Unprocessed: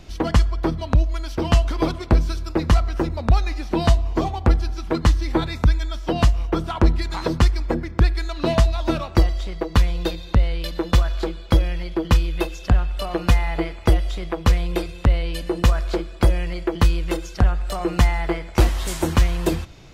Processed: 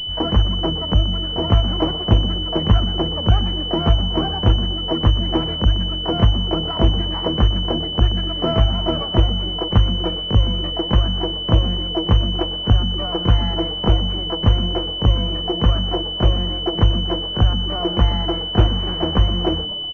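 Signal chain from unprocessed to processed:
pitch-shifted copies added +12 semitones −6 dB
echo with shifted repeats 122 ms, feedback 46%, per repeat +130 Hz, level −15.5 dB
switching amplifier with a slow clock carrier 3,000 Hz

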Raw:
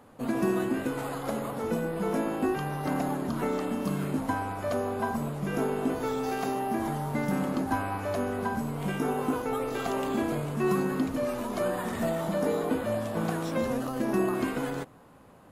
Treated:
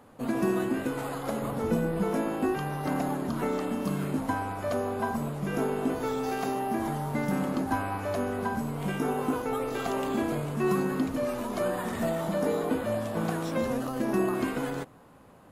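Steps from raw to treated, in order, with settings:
0:01.42–0:02.04: low-shelf EQ 210 Hz +8 dB

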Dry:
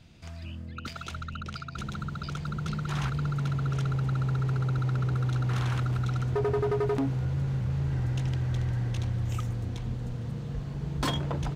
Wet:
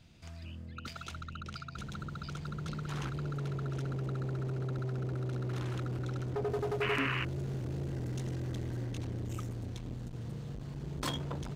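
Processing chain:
high-shelf EQ 4,400 Hz +3 dB, from 0:06.50 +11.5 dB, from 0:08.85 +6.5 dB
0:06.81–0:07.25: sound drawn into the spectrogram noise 960–3,000 Hz −27 dBFS
saturating transformer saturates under 670 Hz
level −5 dB

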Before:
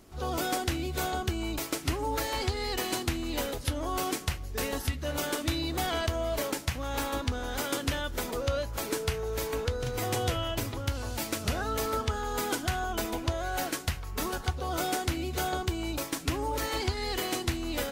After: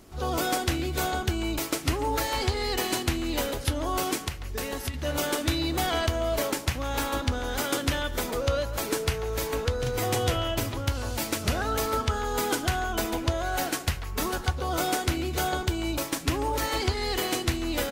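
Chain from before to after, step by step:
far-end echo of a speakerphone 140 ms, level −12 dB
0:04.26–0:04.94: downward compressor 5 to 1, threshold −32 dBFS, peak gain reduction 8 dB
level +3.5 dB

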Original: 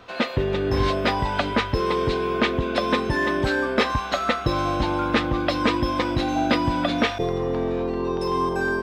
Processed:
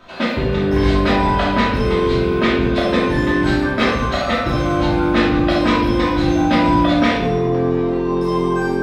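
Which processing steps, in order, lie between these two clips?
rectangular room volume 380 cubic metres, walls mixed, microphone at 2.8 metres
level −3 dB

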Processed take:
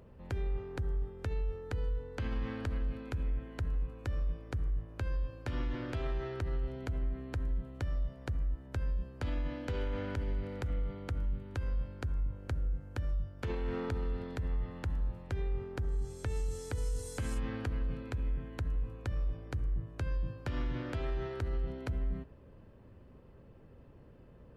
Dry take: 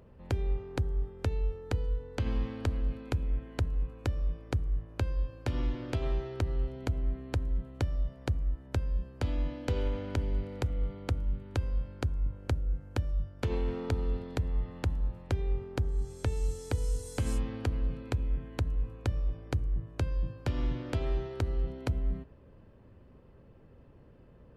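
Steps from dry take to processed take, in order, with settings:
dynamic equaliser 1,600 Hz, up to +7 dB, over −58 dBFS, Q 1.4
brickwall limiter −27 dBFS, peak gain reduction 9.5 dB

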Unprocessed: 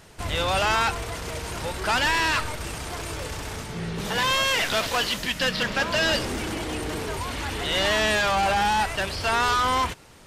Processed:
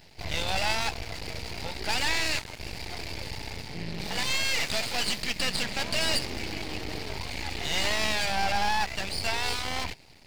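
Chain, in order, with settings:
drawn EQ curve 140 Hz 0 dB, 560 Hz −4 dB, 840 Hz +1 dB, 1,200 Hz −18 dB, 2,200 Hz +5 dB, 3,300 Hz −2 dB, 4,700 Hz +9 dB, 8,500 Hz −27 dB, 15,000 Hz +1 dB
half-wave rectification

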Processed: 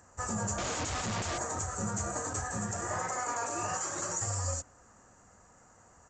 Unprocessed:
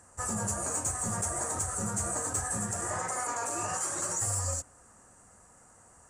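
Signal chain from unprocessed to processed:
0:00.58–0:01.38: comparator with hysteresis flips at −40 dBFS
downsampling to 16,000 Hz

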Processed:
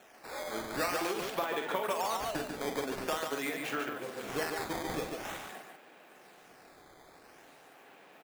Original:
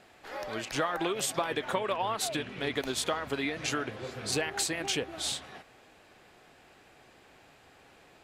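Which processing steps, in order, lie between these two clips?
running median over 9 samples
high-pass filter 150 Hz 24 dB per octave
low-shelf EQ 230 Hz −7.5 dB
in parallel at −2 dB: downward compressor, threshold −44 dBFS, peak gain reduction 17 dB
on the sum: sample-and-hold swept by an LFO 9×, swing 160% 0.47 Hz
on a send: multi-tap delay 45/144 ms −7.5/−5 dB
on the sum: level −3.5 dB

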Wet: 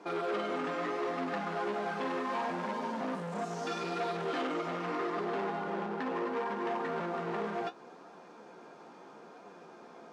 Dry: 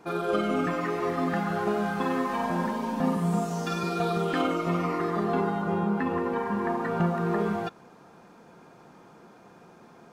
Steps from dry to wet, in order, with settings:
parametric band 1,900 Hz −3.5 dB 2.7 octaves
in parallel at +2.5 dB: downward compressor, threshold −36 dBFS, peak gain reduction 14 dB
on the sum: flanger 0.74 Hz, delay 9.6 ms, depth 9.7 ms, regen +39%
hard clipping −29 dBFS, distortion −9 dB
band-pass filter 320–5,800 Hz

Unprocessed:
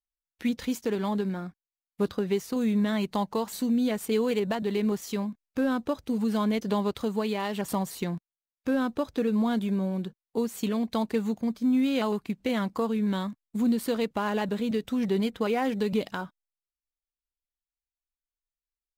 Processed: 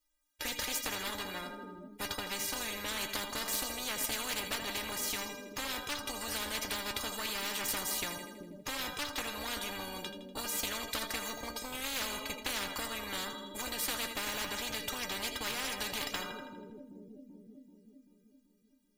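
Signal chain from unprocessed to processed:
stiff-string resonator 290 Hz, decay 0.22 s, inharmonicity 0.008
on a send: echo with a time of its own for lows and highs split 370 Hz, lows 385 ms, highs 81 ms, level −14 dB
on the sum: harmonic generator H 4 −15 dB, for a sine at −22 dBFS
every bin compressed towards the loudest bin 10 to 1
level +4 dB

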